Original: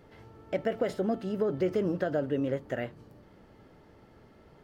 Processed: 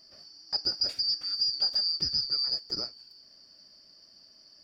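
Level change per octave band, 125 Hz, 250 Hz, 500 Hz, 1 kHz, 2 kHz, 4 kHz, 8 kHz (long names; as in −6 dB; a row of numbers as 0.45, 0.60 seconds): −14.5 dB, −20.0 dB, −22.0 dB, −11.0 dB, below −10 dB, +26.5 dB, can't be measured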